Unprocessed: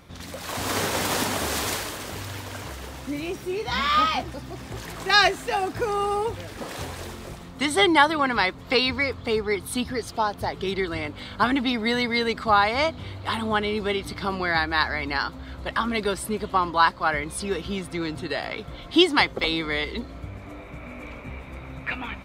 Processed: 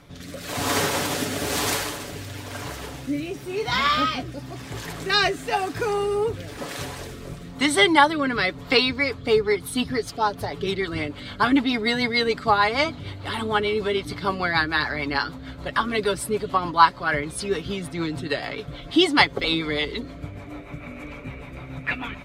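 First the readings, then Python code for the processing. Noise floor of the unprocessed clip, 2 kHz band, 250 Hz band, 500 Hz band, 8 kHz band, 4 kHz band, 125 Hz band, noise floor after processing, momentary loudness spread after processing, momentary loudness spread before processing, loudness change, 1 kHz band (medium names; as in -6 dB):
-41 dBFS, +1.0 dB, +1.5 dB, +2.0 dB, +1.5 dB, +1.0 dB, +2.0 dB, -40 dBFS, 17 LU, 17 LU, +1.0 dB, +0.5 dB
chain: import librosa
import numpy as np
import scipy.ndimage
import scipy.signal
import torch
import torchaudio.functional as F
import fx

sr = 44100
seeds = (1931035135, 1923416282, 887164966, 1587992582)

y = x + 0.45 * np.pad(x, (int(7.0 * sr / 1000.0), 0))[:len(x)]
y = fx.rotary_switch(y, sr, hz=1.0, then_hz=6.7, switch_at_s=8.62)
y = y * librosa.db_to_amplitude(3.0)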